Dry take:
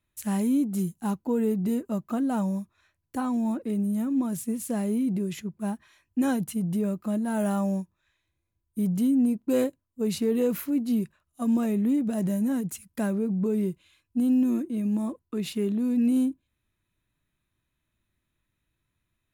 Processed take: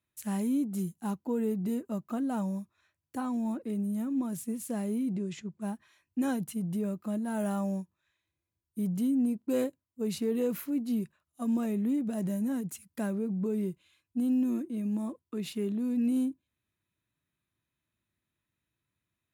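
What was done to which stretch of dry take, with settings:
0:05.16–0:05.62: Butterworth low-pass 8,400 Hz
whole clip: high-pass filter 85 Hz; level −5 dB

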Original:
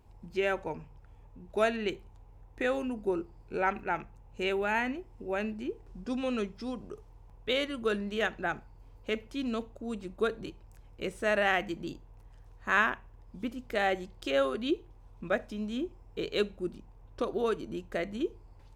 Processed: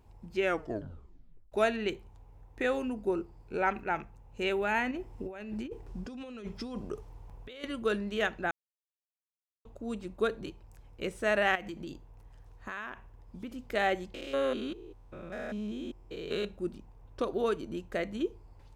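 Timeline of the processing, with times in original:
0:00.42: tape stop 1.10 s
0:04.91–0:07.64: compressor whose output falls as the input rises −40 dBFS
0:08.51–0:09.65: silence
0:11.55–0:13.62: downward compressor, threshold −36 dBFS
0:14.14–0:16.45: spectrum averaged block by block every 200 ms

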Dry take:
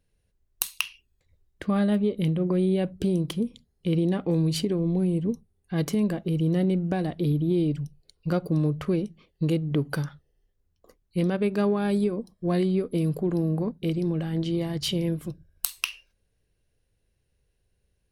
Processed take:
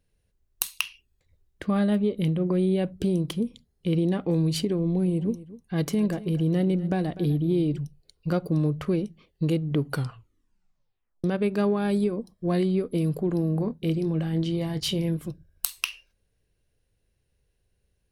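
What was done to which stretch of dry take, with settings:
0:04.81–0:07.78: single-tap delay 247 ms −17 dB
0:09.89: tape stop 1.35 s
0:13.53–0:15.17: double-tracking delay 25 ms −11 dB

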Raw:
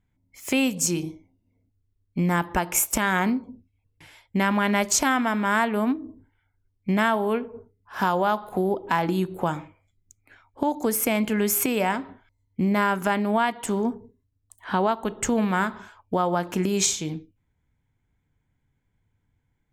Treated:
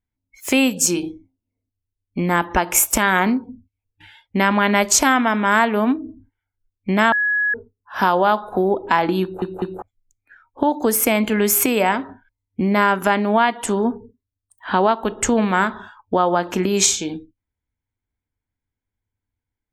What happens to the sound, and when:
0:07.12–0:07.54: beep over 1,680 Hz −22.5 dBFS
0:09.22: stutter in place 0.20 s, 3 plays
whole clip: noise reduction from a noise print of the clip's start 17 dB; parametric band 150 Hz −14 dB 0.39 octaves; level +6.5 dB

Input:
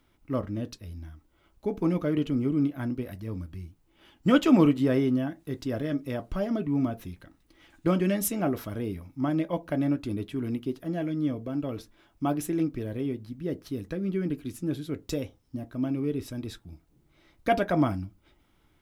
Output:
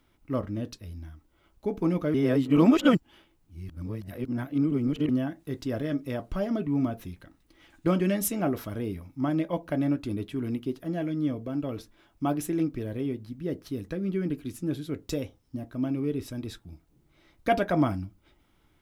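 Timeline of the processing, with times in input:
0:02.14–0:05.09: reverse

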